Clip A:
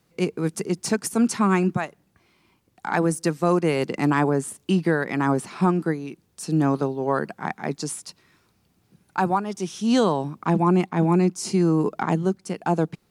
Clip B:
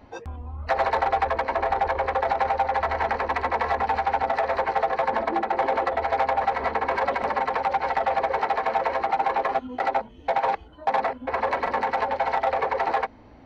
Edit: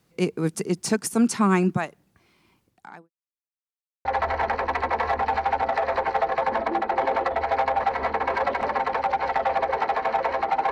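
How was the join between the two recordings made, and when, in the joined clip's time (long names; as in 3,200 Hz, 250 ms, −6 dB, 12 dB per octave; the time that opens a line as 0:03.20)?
clip A
0:02.61–0:03.10: fade out quadratic
0:03.10–0:04.05: silence
0:04.05: continue with clip B from 0:02.66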